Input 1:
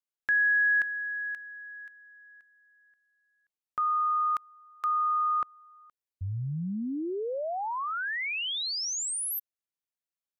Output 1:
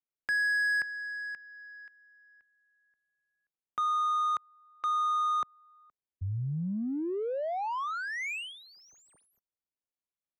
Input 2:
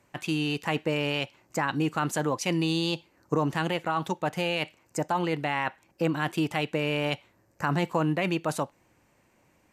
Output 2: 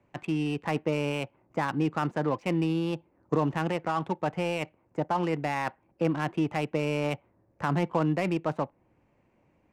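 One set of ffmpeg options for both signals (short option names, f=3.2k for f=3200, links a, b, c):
-filter_complex "[0:a]acrossover=split=160|1800[a][b][c];[c]acompressor=threshold=-51dB:ratio=4:attack=0.29:release=292:detection=rms[d];[a][b][d]amix=inputs=3:normalize=0,aexciter=amount=2.4:drive=5.5:freq=2.2k,adynamicsmooth=sensitivity=6:basefreq=1.2k"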